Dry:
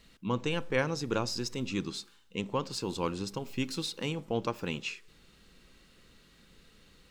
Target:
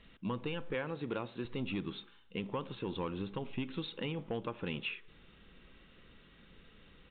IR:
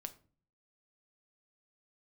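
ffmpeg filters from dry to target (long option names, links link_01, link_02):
-filter_complex "[0:a]asettb=1/sr,asplit=3[link_01][link_02][link_03];[link_01]atrim=end=0.744[link_04];[link_02]atrim=start=0.74:end=1.45,asetpts=PTS-STARTPTS,afade=type=in:duration=0.004:curve=qsin,afade=type=out:start_time=0.706:duration=0.004:curve=qsin,highpass=frequency=180:poles=1[link_05];[link_03]atrim=start=1.446[link_06];[link_04][link_05]acrossfade=duration=0.004:curve1=hsin:curve2=qsin[link_07];[link_07][link_06]acrossfade=duration=0.004:curve1=qsin:curve2=hsin,acompressor=threshold=-32dB:ratio=6,asoftclip=type=tanh:threshold=-28dB,aresample=8000,aresample=44100,volume=1dB"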